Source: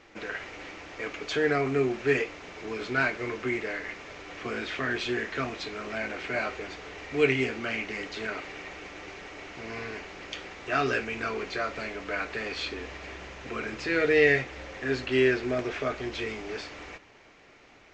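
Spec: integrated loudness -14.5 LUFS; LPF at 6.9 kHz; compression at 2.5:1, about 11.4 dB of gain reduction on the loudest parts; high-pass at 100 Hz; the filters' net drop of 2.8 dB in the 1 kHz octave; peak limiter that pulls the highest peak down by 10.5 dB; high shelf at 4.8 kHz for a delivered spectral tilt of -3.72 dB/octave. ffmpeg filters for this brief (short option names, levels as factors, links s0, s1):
-af "highpass=100,lowpass=6900,equalizer=f=1000:t=o:g=-5,highshelf=f=4800:g=8,acompressor=threshold=0.0178:ratio=2.5,volume=15.8,alimiter=limit=0.631:level=0:latency=1"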